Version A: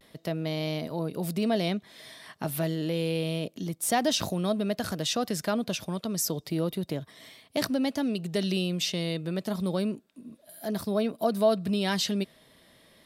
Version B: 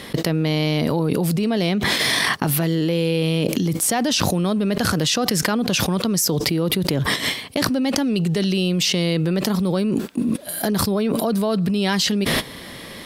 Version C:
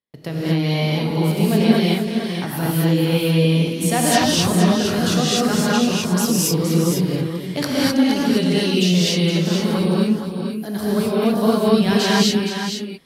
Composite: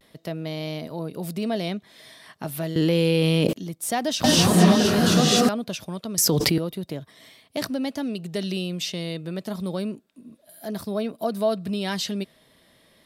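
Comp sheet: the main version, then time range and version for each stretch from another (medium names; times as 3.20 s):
A
2.76–3.53 s: from B
4.24–5.49 s: from C
6.18–6.58 s: from B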